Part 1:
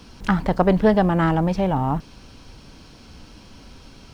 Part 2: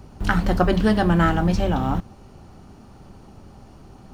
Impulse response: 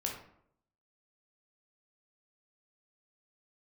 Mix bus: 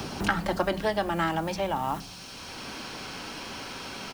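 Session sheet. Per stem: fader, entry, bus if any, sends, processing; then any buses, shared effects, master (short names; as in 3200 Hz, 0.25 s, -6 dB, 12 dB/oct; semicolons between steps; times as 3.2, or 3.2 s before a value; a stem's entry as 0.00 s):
-5.0 dB, 0.00 s, no send, HPF 260 Hz 6 dB/oct; tilt +3.5 dB/oct
-1.5 dB, 0.5 ms, send -22 dB, low shelf 130 Hz -8 dB; auto duck -21 dB, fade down 1.80 s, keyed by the first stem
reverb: on, RT60 0.70 s, pre-delay 12 ms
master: three-band squash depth 70%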